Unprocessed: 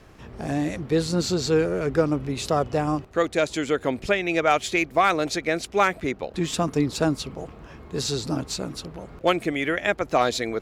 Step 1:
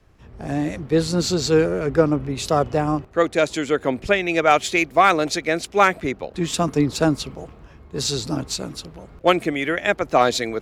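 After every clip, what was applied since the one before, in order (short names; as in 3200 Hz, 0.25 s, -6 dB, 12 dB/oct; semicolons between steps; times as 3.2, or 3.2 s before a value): three-band expander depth 40%; gain +3.5 dB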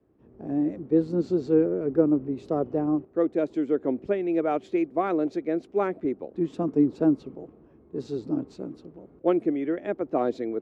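band-pass 320 Hz, Q 1.9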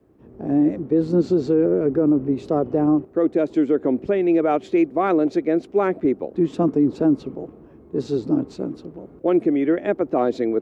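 limiter -18.5 dBFS, peak gain reduction 9.5 dB; gain +8.5 dB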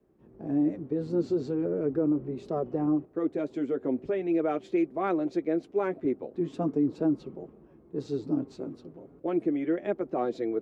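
flange 0.4 Hz, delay 4.9 ms, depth 3.3 ms, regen -37%; gain -5.5 dB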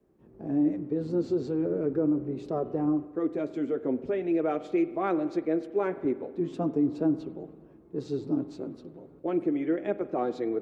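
reverb RT60 1.4 s, pre-delay 44 ms, DRR 13.5 dB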